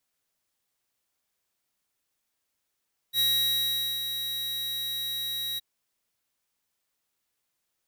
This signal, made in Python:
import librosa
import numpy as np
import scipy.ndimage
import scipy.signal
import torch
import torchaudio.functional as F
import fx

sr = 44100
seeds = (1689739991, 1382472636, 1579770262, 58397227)

y = fx.adsr_tone(sr, wave='square', hz=3840.0, attack_ms=62.0, decay_ms=807.0, sustain_db=-8.5, held_s=2.45, release_ms=20.0, level_db=-23.5)